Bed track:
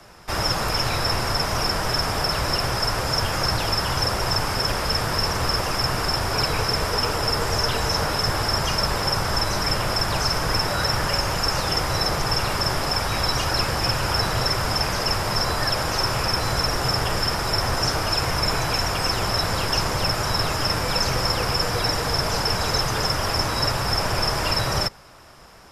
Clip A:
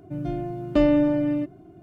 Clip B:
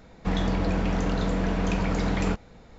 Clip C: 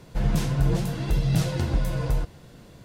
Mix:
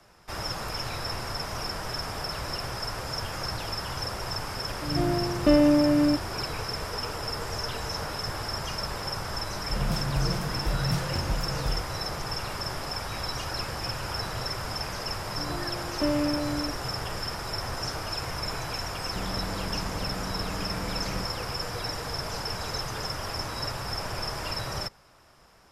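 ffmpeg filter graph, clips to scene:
ffmpeg -i bed.wav -i cue0.wav -i cue1.wav -i cue2.wav -filter_complex "[1:a]asplit=2[link_01][link_02];[0:a]volume=-10dB[link_03];[link_01]dynaudnorm=framelen=140:gausssize=3:maxgain=11.5dB,atrim=end=1.82,asetpts=PTS-STARTPTS,volume=-8dB,afade=type=in:duration=0.004:curve=hsin,afade=type=out:start_time=1.816:duration=0.004:curve=hsin,adelay=4710[link_04];[3:a]atrim=end=2.84,asetpts=PTS-STARTPTS,volume=-5.5dB,afade=type=in:duration=0.004:curve=hsin,afade=type=out:start_time=2.836:duration=0.004:curve=hsin,adelay=9560[link_05];[link_02]atrim=end=1.82,asetpts=PTS-STARTPTS,volume=-8dB,afade=type=in:duration=0.004:curve=hsin,afade=type=out:start_time=1.816:duration=0.004:curve=hsin,adelay=15260[link_06];[2:a]atrim=end=2.78,asetpts=PTS-STARTPTS,volume=-10.5dB,afade=type=in:duration=0.004:curve=hsin,afade=type=out:start_time=2.776:duration=0.004:curve=hsin,adelay=18890[link_07];[link_03][link_04][link_05][link_06][link_07]amix=inputs=5:normalize=0" out.wav

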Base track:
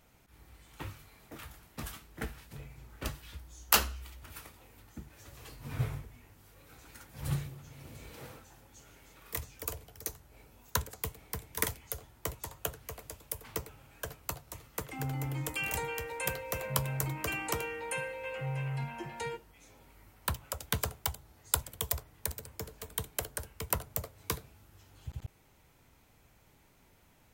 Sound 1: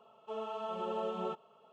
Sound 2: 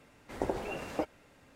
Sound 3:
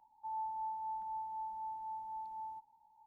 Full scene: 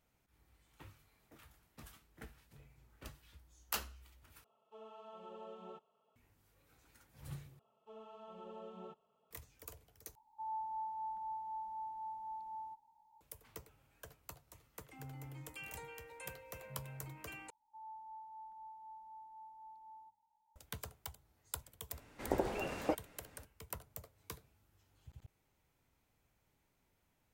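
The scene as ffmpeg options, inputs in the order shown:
ffmpeg -i bed.wav -i cue0.wav -i cue1.wav -i cue2.wav -filter_complex "[1:a]asplit=2[link_01][link_02];[3:a]asplit=2[link_03][link_04];[0:a]volume=-14dB[link_05];[link_02]lowshelf=frequency=170:gain=11.5[link_06];[link_04]bandreject=frequency=50:width_type=h:width=6,bandreject=frequency=100:width_type=h:width=6,bandreject=frequency=150:width_type=h:width=6,bandreject=frequency=200:width_type=h:width=6,bandreject=frequency=250:width_type=h:width=6[link_07];[link_05]asplit=5[link_08][link_09][link_10][link_11][link_12];[link_08]atrim=end=4.444[link_13];[link_01]atrim=end=1.72,asetpts=PTS-STARTPTS,volume=-14.5dB[link_14];[link_09]atrim=start=6.156:end=7.594[link_15];[link_06]atrim=end=1.72,asetpts=PTS-STARTPTS,volume=-15.5dB[link_16];[link_10]atrim=start=9.306:end=10.154[link_17];[link_03]atrim=end=3.06,asetpts=PTS-STARTPTS,volume=-1.5dB[link_18];[link_11]atrim=start=13.206:end=17.504[link_19];[link_07]atrim=end=3.06,asetpts=PTS-STARTPTS,volume=-11dB[link_20];[link_12]atrim=start=20.556[link_21];[2:a]atrim=end=1.55,asetpts=PTS-STARTPTS,volume=-1.5dB,afade=type=in:duration=0.004:curve=hsin,afade=type=out:start_time=1.546:duration=0.004:curve=hsin,adelay=21900[link_22];[link_13][link_14]acrossfade=duration=0.004:curve1=hsin:curve2=hsin[link_23];[link_23][link_15]acrossfade=duration=0.004:curve1=hsin:curve2=hsin[link_24];[link_24][link_16]acrossfade=duration=0.004:curve1=hsin:curve2=hsin[link_25];[link_25][link_17]acrossfade=duration=0.004:curve1=hsin:curve2=hsin[link_26];[link_26][link_18]acrossfade=duration=0.004:curve1=hsin:curve2=hsin[link_27];[link_27][link_19]acrossfade=duration=0.004:curve1=hsin:curve2=hsin[link_28];[link_28][link_20]acrossfade=duration=0.004:curve1=hsin:curve2=hsin[link_29];[link_29][link_21]acrossfade=duration=0.004:curve1=hsin:curve2=hsin[link_30];[link_30][link_22]amix=inputs=2:normalize=0" out.wav

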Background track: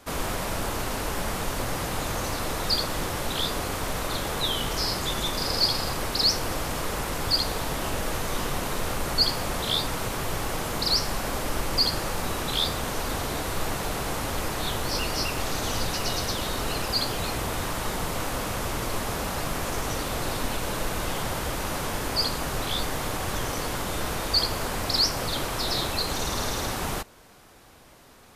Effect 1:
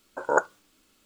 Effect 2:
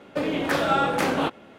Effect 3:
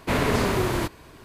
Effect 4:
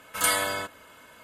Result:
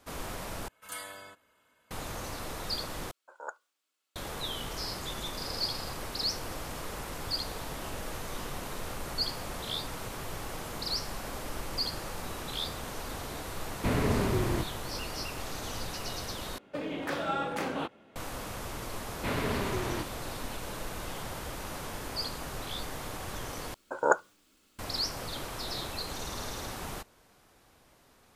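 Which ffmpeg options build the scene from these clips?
ffmpeg -i bed.wav -i cue0.wav -i cue1.wav -i cue2.wav -i cue3.wav -filter_complex "[1:a]asplit=2[link_01][link_02];[3:a]asplit=2[link_03][link_04];[0:a]volume=-9.5dB[link_05];[link_01]highpass=640[link_06];[link_03]lowshelf=frequency=390:gain=8[link_07];[link_04]highshelf=frequency=5100:width_type=q:width=1.5:gain=-7[link_08];[link_05]asplit=5[link_09][link_10][link_11][link_12][link_13];[link_09]atrim=end=0.684[link_14];[4:a]atrim=end=1.23,asetpts=PTS-STARTPTS,volume=-17.5dB[link_15];[link_10]atrim=start=1.906:end=3.114[link_16];[link_06]atrim=end=1.05,asetpts=PTS-STARTPTS,volume=-17dB[link_17];[link_11]atrim=start=4.156:end=16.584[link_18];[2:a]atrim=end=1.58,asetpts=PTS-STARTPTS,volume=-10dB[link_19];[link_12]atrim=start=18.156:end=23.744[link_20];[link_02]atrim=end=1.05,asetpts=PTS-STARTPTS,volume=-2dB[link_21];[link_13]atrim=start=24.786[link_22];[link_07]atrim=end=1.24,asetpts=PTS-STARTPTS,volume=-10dB,afade=type=in:duration=0.004:curve=hsin,afade=type=out:start_time=1.236:duration=0.004:curve=hsin,adelay=13760[link_23];[link_08]atrim=end=1.24,asetpts=PTS-STARTPTS,volume=-9.5dB,afade=type=in:duration=0.004:curve=hsin,afade=type=out:start_time=1.236:duration=0.004:curve=hsin,adelay=19160[link_24];[link_14][link_15]acrossfade=duration=0.004:curve1=hsin:curve2=hsin[link_25];[link_25][link_16]acrossfade=duration=0.004:curve1=hsin:curve2=hsin[link_26];[link_26][link_17]acrossfade=duration=0.004:curve1=hsin:curve2=hsin[link_27];[link_27][link_18]acrossfade=duration=0.004:curve1=hsin:curve2=hsin[link_28];[link_28][link_19]acrossfade=duration=0.004:curve1=hsin:curve2=hsin[link_29];[link_29][link_20]acrossfade=duration=0.004:curve1=hsin:curve2=hsin[link_30];[link_30][link_21]acrossfade=duration=0.004:curve1=hsin:curve2=hsin[link_31];[link_31][link_22]acrossfade=duration=0.004:curve1=hsin:curve2=hsin[link_32];[link_32][link_23][link_24]amix=inputs=3:normalize=0" out.wav

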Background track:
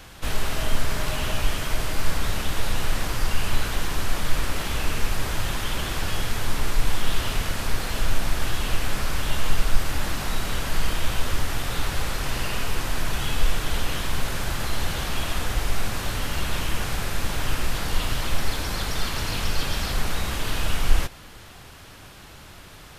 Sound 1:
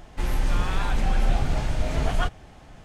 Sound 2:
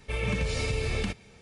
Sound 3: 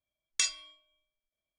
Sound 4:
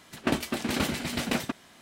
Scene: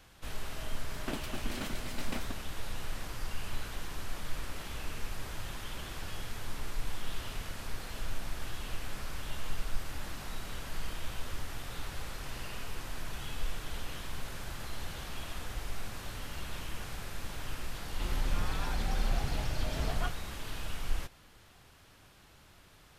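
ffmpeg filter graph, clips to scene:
ffmpeg -i bed.wav -i cue0.wav -i cue1.wav -i cue2.wav -i cue3.wav -filter_complex "[0:a]volume=-14dB[link_01];[4:a]atrim=end=1.81,asetpts=PTS-STARTPTS,volume=-12dB,afade=type=in:duration=0.004:curve=hsin,afade=type=out:start_time=1.806:duration=0.004:curve=hsin,adelay=810[link_02];[1:a]atrim=end=2.84,asetpts=PTS-STARTPTS,volume=-9.5dB,afade=type=in:duration=0.004:curve=hsin,afade=type=out:start_time=2.836:duration=0.004:curve=hsin,adelay=17820[link_03];[link_01][link_02][link_03]amix=inputs=3:normalize=0" out.wav

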